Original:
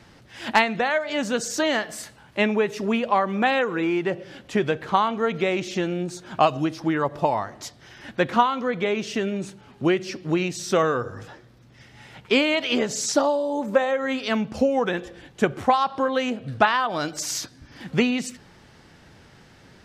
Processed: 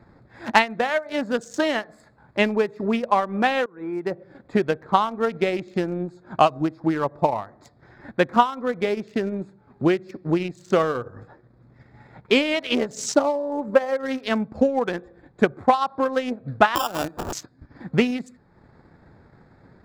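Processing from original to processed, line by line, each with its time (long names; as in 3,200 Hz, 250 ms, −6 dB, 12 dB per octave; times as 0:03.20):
0:03.66–0:04.24: fade in, from −18.5 dB
0:16.75–0:17.33: sample-rate reduction 2,100 Hz
whole clip: adaptive Wiener filter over 15 samples; transient designer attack +3 dB, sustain −7 dB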